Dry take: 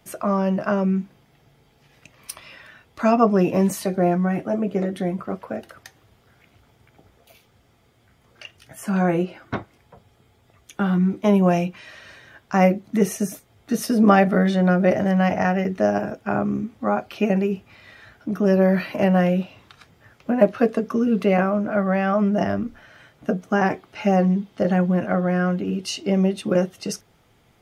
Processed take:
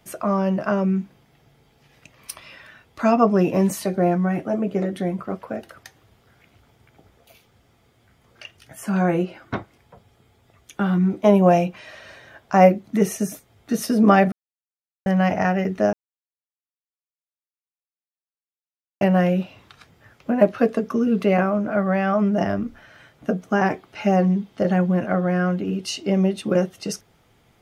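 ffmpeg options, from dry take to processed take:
-filter_complex "[0:a]asettb=1/sr,asplit=3[s0][s1][s2];[s0]atrim=end=11.044[s3];[s1]atrim=start=11.04:end=12.69,asetpts=PTS-STARTPTS,afade=t=in:d=0.004:c=qsin,afade=t=out:st=1.646:d=0.004:c=qsin,equalizer=f=640:w=1.5:g=6.5[s4];[s2]atrim=start=12.686[s5];[s3][s4]acrossfade=d=0.004:c1=hsin:c2=qsin[s6];[s6][s5]acrossfade=d=0.004:c1=qsin:c2=hsin,asplit=5[s7][s8][s9][s10][s11];[s7]atrim=end=14.32,asetpts=PTS-STARTPTS,afade=t=out:st=14.316:d=0.004:c=hsin[s12];[s8]atrim=start=14.32:end=15.06,asetpts=PTS-STARTPTS,volume=0[s13];[s9]atrim=start=15.06:end=15.93,asetpts=PTS-STARTPTS,afade=t=in:d=0.004:c=hsin,afade=t=out:st=0.866:d=0.004:c=hsin[s14];[s10]atrim=start=15.93:end=19.01,asetpts=PTS-STARTPTS,volume=0[s15];[s11]atrim=start=19.01,asetpts=PTS-STARTPTS,afade=t=in:d=0.004:c=hsin[s16];[s12][s13][s14][s15][s16]concat=n=5:v=0:a=1"

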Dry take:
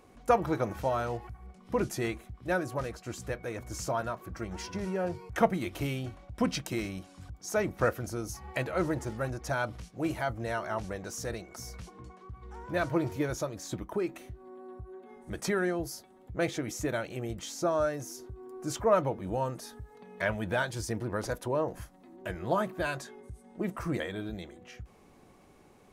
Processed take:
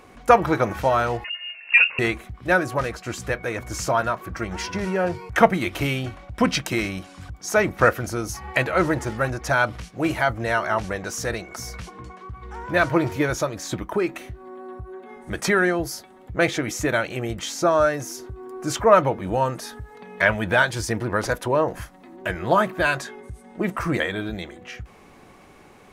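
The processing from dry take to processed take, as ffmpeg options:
-filter_complex "[0:a]asettb=1/sr,asplit=3[s0][s1][s2];[s0]atrim=end=1.244[s3];[s1]atrim=start=1.24:end=1.99,asetpts=PTS-STARTPTS,afade=t=in:d=0.004:c=qsin,afade=t=out:st=0.746:d=0.004:c=qsin,lowpass=f=2500:t=q:w=0.5098,lowpass=f=2500:t=q:w=0.6013,lowpass=f=2500:t=q:w=0.9,lowpass=f=2500:t=q:w=2.563,afreqshift=-2900[s4];[s2]atrim=start=1.986[s5];[s3][s4]acrossfade=d=0.004:c1=hsin:c2=qsin[s6];[s6][s5]acrossfade=d=0.004:c1=qsin:c2=hsin,equalizer=f=1900:t=o:w=2.2:g=6.5,volume=2.37"

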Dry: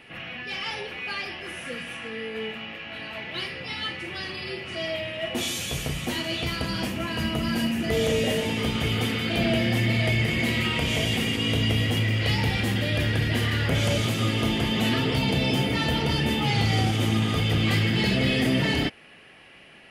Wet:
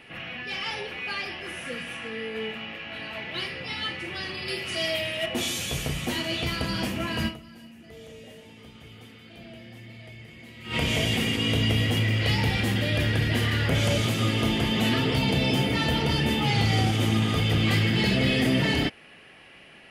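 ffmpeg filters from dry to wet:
-filter_complex "[0:a]asettb=1/sr,asplit=3[s0][s1][s2];[s0]atrim=end=4.484[s3];[s1]atrim=start=4.48:end=5.26,asetpts=PTS-STARTPTS,afade=t=in:d=0.004:c=qsin,afade=t=out:st=0.776:d=0.004:c=qsin,aemphasis=mode=production:type=75kf[s4];[s2]atrim=start=5.256[s5];[s3][s4]acrossfade=d=0.004:c1=hsin:c2=qsin[s6];[s6][s5]acrossfade=d=0.004:c1=qsin:c2=hsin,asplit=3[s7][s8][s9];[s7]atrim=end=7.72,asetpts=PTS-STARTPTS,afade=t=out:st=7.27:d=0.45:c=exp:silence=0.0841395[s10];[s8]atrim=start=7.72:end=10.3,asetpts=PTS-STARTPTS,volume=0.0841[s11];[s9]atrim=start=10.3,asetpts=PTS-STARTPTS,afade=t=in:d=0.45:c=exp:silence=0.0841395[s12];[s10][s11][s12]concat=n=3:v=0:a=1"

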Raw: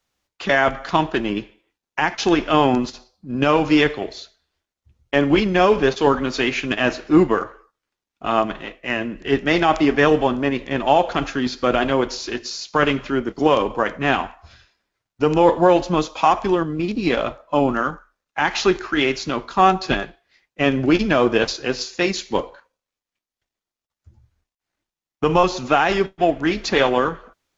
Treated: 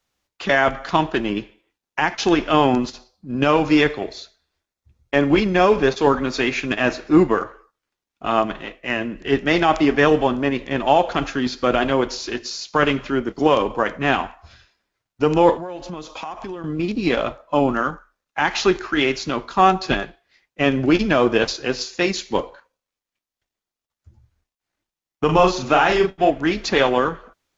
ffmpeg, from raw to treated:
-filter_complex "[0:a]asettb=1/sr,asplit=3[s0][s1][s2];[s0]atrim=end=3.624[s3];[s1]atrim=start=3.62:end=7.36,asetpts=PTS-STARTPTS,afade=t=in:d=0.004:c=qsin,afade=t=out:st=3.736:d=0.004:c=qsin,bandreject=f=3000:w=12[s4];[s2]atrim=start=7.356[s5];[s3][s4]acrossfade=d=0.004:c1=hsin:c2=qsin[s6];[s6][s5]acrossfade=d=0.004:c1=qsin:c2=hsin,asettb=1/sr,asplit=3[s7][s8][s9];[s7]atrim=end=15.564[s10];[s8]atrim=start=15.56:end=16.64,asetpts=PTS-STARTPTS,afade=t=in:d=0.004:c=qsin,afade=t=out:st=1.076:d=0.004:c=qsin,acompressor=threshold=0.0355:ratio=5:attack=3.2:release=140:knee=1:detection=peak[s11];[s9]atrim=start=16.636[s12];[s10][s11]acrossfade=d=0.004:c1=hsin:c2=qsin[s13];[s13][s12]acrossfade=d=0.004:c1=qsin:c2=hsin,asettb=1/sr,asplit=3[s14][s15][s16];[s14]atrim=end=25.254[s17];[s15]atrim=start=25.25:end=26.3,asetpts=PTS-STARTPTS,afade=t=in:d=0.004:c=qsin,afade=t=out:st=1.046:d=0.004:c=qsin,asplit=2[s18][s19];[s19]adelay=38,volume=0.631[s20];[s18][s20]amix=inputs=2:normalize=0,atrim=end_sample=46305[s21];[s16]atrim=start=26.296[s22];[s17][s21]acrossfade=d=0.004:c1=hsin:c2=qsin[s23];[s23][s22]acrossfade=d=0.004:c1=qsin:c2=hsin"

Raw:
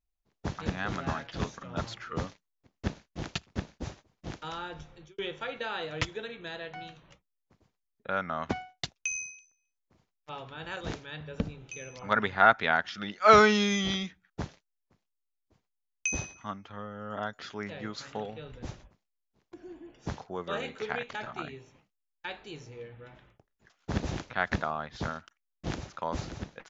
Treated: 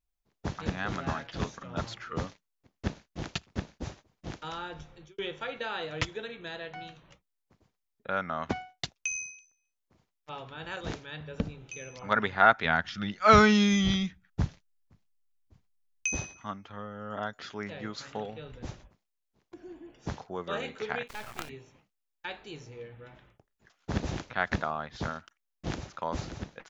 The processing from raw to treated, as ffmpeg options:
-filter_complex "[0:a]asplit=3[s0][s1][s2];[s0]afade=t=out:st=12.64:d=0.02[s3];[s1]asubboost=boost=3.5:cutoff=200,afade=t=in:st=12.64:d=0.02,afade=t=out:st=16.11:d=0.02[s4];[s2]afade=t=in:st=16.11:d=0.02[s5];[s3][s4][s5]amix=inputs=3:normalize=0,asplit=3[s6][s7][s8];[s6]afade=t=out:st=21.07:d=0.02[s9];[s7]acrusher=bits=5:dc=4:mix=0:aa=0.000001,afade=t=in:st=21.07:d=0.02,afade=t=out:st=21.48:d=0.02[s10];[s8]afade=t=in:st=21.48:d=0.02[s11];[s9][s10][s11]amix=inputs=3:normalize=0"

